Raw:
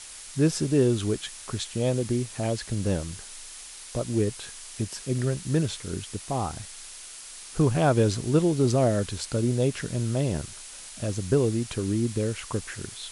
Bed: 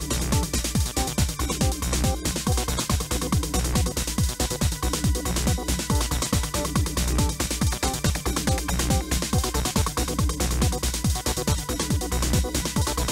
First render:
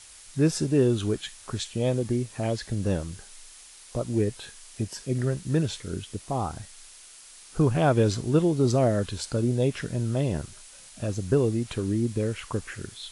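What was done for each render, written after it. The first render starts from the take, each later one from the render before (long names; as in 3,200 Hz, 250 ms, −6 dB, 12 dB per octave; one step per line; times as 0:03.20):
noise reduction from a noise print 6 dB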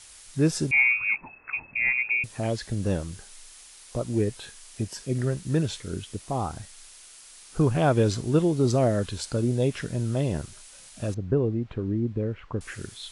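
0:00.71–0:02.24: voice inversion scrambler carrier 2,600 Hz
0:11.14–0:12.61: head-to-tape spacing loss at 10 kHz 42 dB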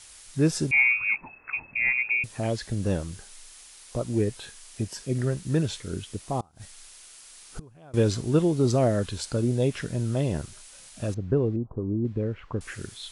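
0:06.40–0:07.94: gate with flip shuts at −23 dBFS, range −28 dB
0:11.56–0:12.05: elliptic low-pass filter 1,100 Hz, stop band 50 dB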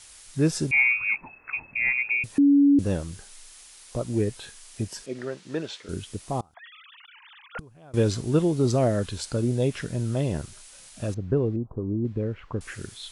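0:02.38–0:02.79: beep over 283 Hz −13.5 dBFS
0:05.06–0:05.89: band-pass filter 350–4,800 Hz
0:06.54–0:07.59: three sine waves on the formant tracks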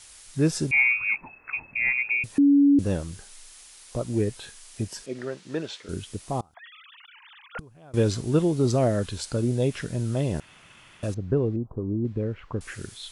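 0:10.40–0:11.03: fill with room tone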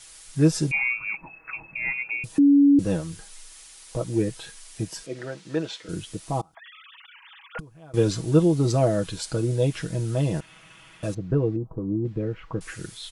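comb filter 6.2 ms
dynamic equaliser 2,000 Hz, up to −7 dB, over −39 dBFS, Q 2.1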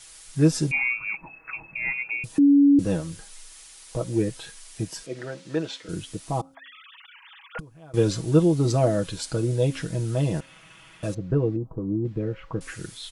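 hum removal 269.2 Hz, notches 2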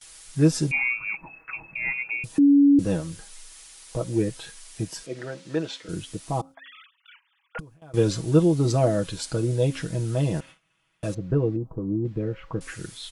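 noise gate with hold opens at −38 dBFS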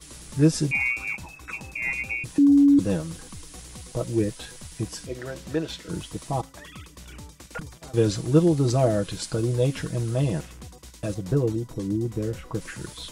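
mix in bed −20 dB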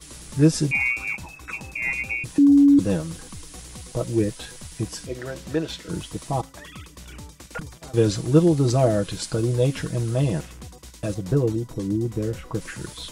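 level +2 dB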